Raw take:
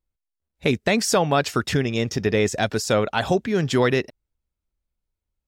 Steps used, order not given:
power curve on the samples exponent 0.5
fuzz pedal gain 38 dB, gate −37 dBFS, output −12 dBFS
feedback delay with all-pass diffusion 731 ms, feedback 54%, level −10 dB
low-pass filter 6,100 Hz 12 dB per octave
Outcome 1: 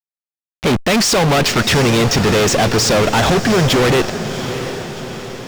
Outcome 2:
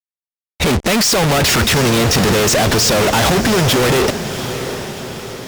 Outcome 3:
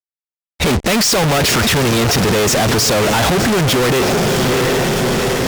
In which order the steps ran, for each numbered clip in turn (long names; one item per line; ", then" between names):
fuzz pedal, then low-pass filter, then power curve on the samples, then feedback delay with all-pass diffusion
low-pass filter, then power curve on the samples, then fuzz pedal, then feedback delay with all-pass diffusion
low-pass filter, then power curve on the samples, then feedback delay with all-pass diffusion, then fuzz pedal